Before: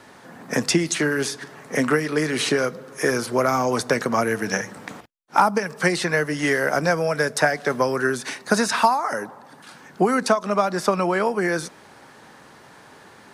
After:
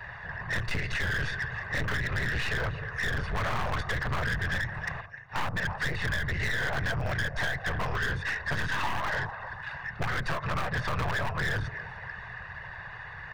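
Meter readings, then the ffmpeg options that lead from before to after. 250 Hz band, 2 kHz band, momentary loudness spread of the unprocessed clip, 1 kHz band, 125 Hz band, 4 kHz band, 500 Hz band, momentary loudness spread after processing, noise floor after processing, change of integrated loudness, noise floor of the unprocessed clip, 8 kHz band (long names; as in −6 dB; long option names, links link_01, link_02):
−15.5 dB, −4.0 dB, 8 LU, −11.0 dB, −0.5 dB, −7.0 dB, −17.0 dB, 10 LU, −43 dBFS, −9.5 dB, −48 dBFS, −17.5 dB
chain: -filter_complex "[0:a]aecho=1:1:1.1:0.9,asplit=2[link_01][link_02];[link_02]aecho=0:1:300|600|900:0.0708|0.0297|0.0125[link_03];[link_01][link_03]amix=inputs=2:normalize=0,afftfilt=real='hypot(re,im)*cos(2*PI*random(0))':imag='hypot(re,im)*sin(2*PI*random(1))':win_size=512:overlap=0.75,aeval=exprs='0.531*(cos(1*acos(clip(val(0)/0.531,-1,1)))-cos(1*PI/2))+0.0473*(cos(8*acos(clip(val(0)/0.531,-1,1)))-cos(8*PI/2))':channel_layout=same,firequalizer=gain_entry='entry(120,0);entry(260,-27);entry(440,1);entry(830,-4);entry(1500,9);entry(7700,-19)':delay=0.05:min_phase=1,aresample=22050,aresample=44100,asplit=2[link_04][link_05];[link_05]aeval=exprs='(mod(10.6*val(0)+1,2)-1)/10.6':channel_layout=same,volume=-10.5dB[link_06];[link_04][link_06]amix=inputs=2:normalize=0,bass=frequency=250:gain=9,treble=frequency=4000:gain=-9,bandreject=frequency=3100:width=12,acrossover=split=1100|5500[link_07][link_08][link_09];[link_07]acompressor=threshold=-25dB:ratio=4[link_10];[link_08]acompressor=threshold=-31dB:ratio=4[link_11];[link_09]acompressor=threshold=-54dB:ratio=4[link_12];[link_10][link_11][link_12]amix=inputs=3:normalize=0,asoftclip=type=tanh:threshold=-29dB,volume=3.5dB"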